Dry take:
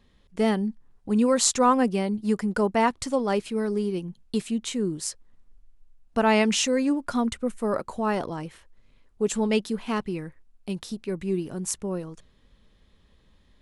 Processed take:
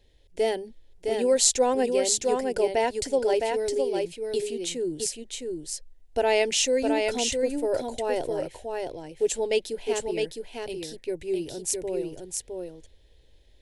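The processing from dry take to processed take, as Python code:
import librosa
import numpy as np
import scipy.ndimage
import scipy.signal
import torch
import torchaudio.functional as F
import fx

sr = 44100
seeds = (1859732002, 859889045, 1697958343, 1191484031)

p1 = fx.fixed_phaser(x, sr, hz=490.0, stages=4)
p2 = p1 + fx.echo_single(p1, sr, ms=661, db=-4.0, dry=0)
y = p2 * librosa.db_to_amplitude(2.0)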